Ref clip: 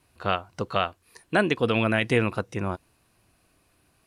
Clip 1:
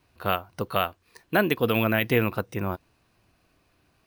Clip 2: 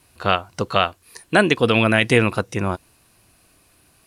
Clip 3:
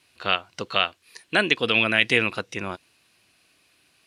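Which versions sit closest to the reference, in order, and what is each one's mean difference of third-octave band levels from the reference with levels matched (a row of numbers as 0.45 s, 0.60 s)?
2, 1, 3; 1.5 dB, 3.0 dB, 4.5 dB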